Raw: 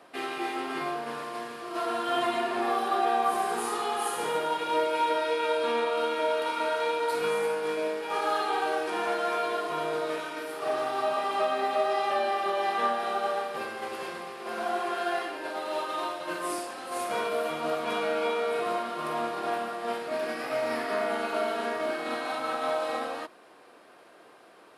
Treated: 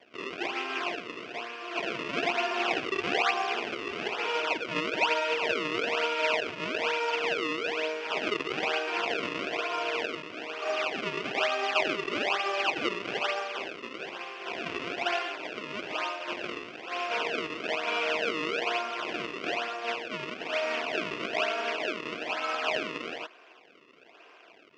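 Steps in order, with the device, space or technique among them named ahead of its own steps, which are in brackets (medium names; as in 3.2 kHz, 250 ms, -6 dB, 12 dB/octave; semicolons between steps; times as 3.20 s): circuit-bent sampling toy (decimation with a swept rate 32×, swing 160% 1.1 Hz; cabinet simulation 520–4500 Hz, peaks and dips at 540 Hz -7 dB, 830 Hz -8 dB, 1.2 kHz -4 dB, 1.8 kHz -4 dB, 2.6 kHz +8 dB, 4 kHz -9 dB); trim +4.5 dB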